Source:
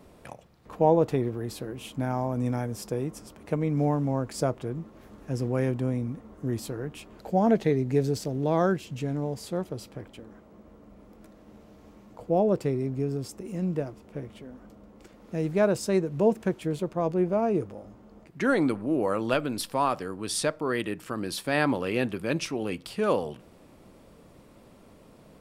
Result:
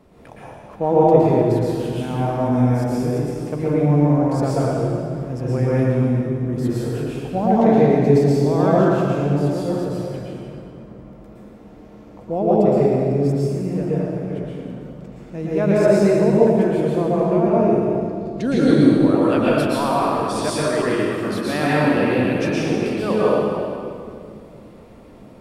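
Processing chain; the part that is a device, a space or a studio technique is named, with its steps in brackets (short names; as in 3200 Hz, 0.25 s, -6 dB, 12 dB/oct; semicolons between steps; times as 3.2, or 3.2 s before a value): 17.82–18.71 graphic EQ 125/250/1000/2000/4000/8000 Hz +8/+4/-10/-8/+11/+5 dB; swimming-pool hall (reverb RT60 2.4 s, pre-delay 0.109 s, DRR -8 dB; high shelf 4400 Hz -7.5 dB)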